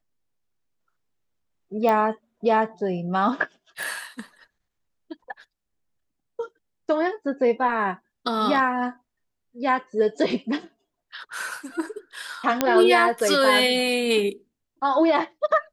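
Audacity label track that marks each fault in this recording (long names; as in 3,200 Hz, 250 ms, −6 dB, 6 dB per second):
1.890000	1.890000	click −12 dBFS
3.830000	3.830000	click
12.610000	12.610000	click −4 dBFS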